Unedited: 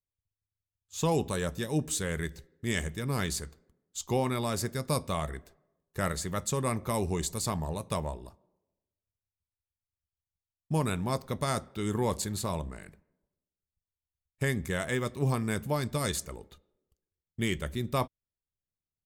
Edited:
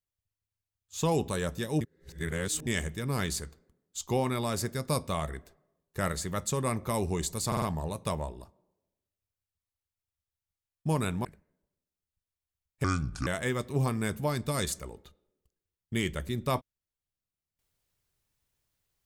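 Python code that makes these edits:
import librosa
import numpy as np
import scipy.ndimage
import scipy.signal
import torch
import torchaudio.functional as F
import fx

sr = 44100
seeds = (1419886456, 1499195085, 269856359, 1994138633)

y = fx.edit(x, sr, fx.reverse_span(start_s=1.81, length_s=0.86),
    fx.stutter(start_s=7.47, slice_s=0.05, count=4),
    fx.cut(start_s=11.1, length_s=1.75),
    fx.speed_span(start_s=14.44, length_s=0.29, speed=0.68), tone=tone)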